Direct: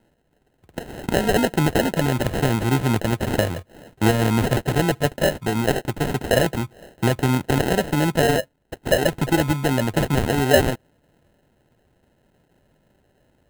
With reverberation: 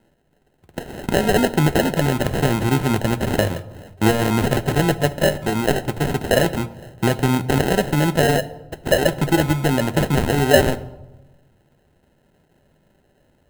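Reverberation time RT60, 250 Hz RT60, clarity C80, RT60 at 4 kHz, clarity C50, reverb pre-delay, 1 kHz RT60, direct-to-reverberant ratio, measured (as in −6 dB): 1.1 s, 1.3 s, 19.0 dB, 0.65 s, 17.0 dB, 5 ms, 1.0 s, 12.0 dB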